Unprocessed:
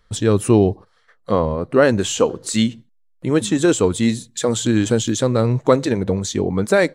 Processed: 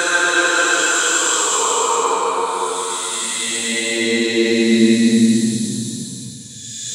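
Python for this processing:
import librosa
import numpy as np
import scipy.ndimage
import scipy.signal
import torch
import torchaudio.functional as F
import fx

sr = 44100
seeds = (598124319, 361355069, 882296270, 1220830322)

y = fx.paulstretch(x, sr, seeds[0], factor=9.9, window_s=0.25, from_s=3.63)
y = fx.filter_sweep_highpass(y, sr, from_hz=1100.0, to_hz=93.0, start_s=3.03, end_s=6.78, q=1.6)
y = y * librosa.db_to_amplitude(7.5)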